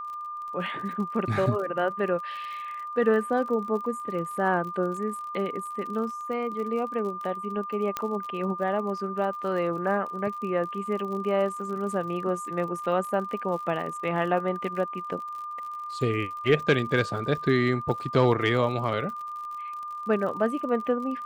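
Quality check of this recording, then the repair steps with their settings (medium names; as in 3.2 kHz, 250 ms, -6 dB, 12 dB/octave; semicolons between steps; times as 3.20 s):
crackle 52 per s -36 dBFS
whine 1.2 kHz -33 dBFS
7.97 s: pop -13 dBFS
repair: de-click; band-stop 1.2 kHz, Q 30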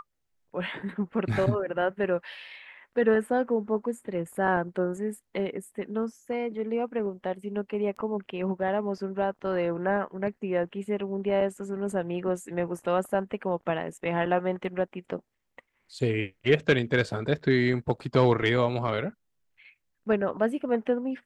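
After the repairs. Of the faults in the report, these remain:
7.97 s: pop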